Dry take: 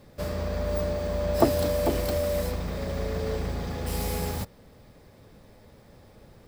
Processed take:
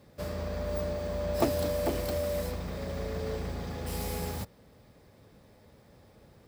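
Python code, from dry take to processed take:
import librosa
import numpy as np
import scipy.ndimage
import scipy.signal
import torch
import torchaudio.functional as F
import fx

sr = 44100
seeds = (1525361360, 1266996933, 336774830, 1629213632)

p1 = scipy.signal.sosfilt(scipy.signal.butter(2, 48.0, 'highpass', fs=sr, output='sos'), x)
p2 = (np.mod(10.0 ** (14.0 / 20.0) * p1 + 1.0, 2.0) - 1.0) / 10.0 ** (14.0 / 20.0)
p3 = p1 + (p2 * librosa.db_to_amplitude(-9.0))
y = p3 * librosa.db_to_amplitude(-7.0)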